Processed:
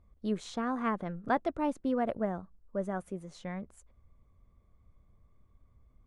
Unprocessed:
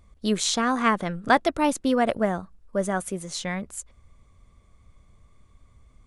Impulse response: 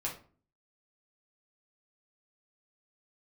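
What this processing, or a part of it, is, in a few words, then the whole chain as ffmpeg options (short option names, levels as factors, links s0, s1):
through cloth: -af "highshelf=f=2400:g=-18,volume=0.422"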